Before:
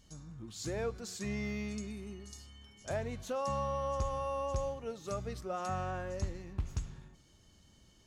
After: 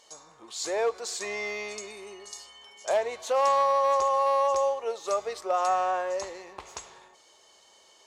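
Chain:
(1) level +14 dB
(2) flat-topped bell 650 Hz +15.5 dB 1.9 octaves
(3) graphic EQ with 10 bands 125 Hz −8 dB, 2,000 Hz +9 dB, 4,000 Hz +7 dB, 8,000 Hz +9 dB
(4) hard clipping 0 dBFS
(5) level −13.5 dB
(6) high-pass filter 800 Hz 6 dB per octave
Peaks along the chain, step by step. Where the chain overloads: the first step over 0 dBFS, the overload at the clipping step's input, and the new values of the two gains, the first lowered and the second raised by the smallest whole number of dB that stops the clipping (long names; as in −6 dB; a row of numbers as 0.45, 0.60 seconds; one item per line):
−10.5, +2.0, +3.5, 0.0, −13.5, −14.0 dBFS
step 2, 3.5 dB
step 1 +10 dB, step 5 −9.5 dB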